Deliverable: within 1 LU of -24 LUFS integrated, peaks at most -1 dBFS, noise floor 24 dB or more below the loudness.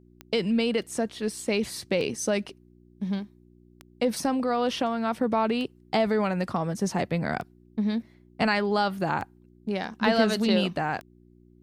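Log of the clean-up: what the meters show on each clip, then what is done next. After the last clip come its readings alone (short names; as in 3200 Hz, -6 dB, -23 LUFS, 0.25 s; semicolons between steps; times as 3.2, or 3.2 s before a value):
clicks 7; hum 60 Hz; harmonics up to 360 Hz; hum level -54 dBFS; loudness -27.5 LUFS; peak -7.0 dBFS; loudness target -24.0 LUFS
-> de-click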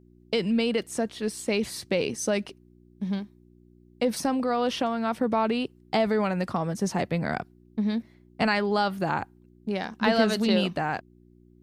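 clicks 0; hum 60 Hz; harmonics up to 360 Hz; hum level -54 dBFS
-> de-hum 60 Hz, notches 6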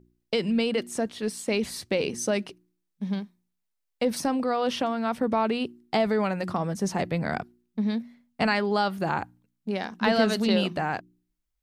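hum none; loudness -27.5 LUFS; peak -7.0 dBFS; loudness target -24.0 LUFS
-> gain +3.5 dB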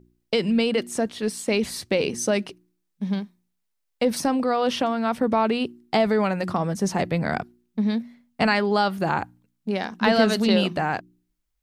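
loudness -24.0 LUFS; peak -3.5 dBFS; noise floor -76 dBFS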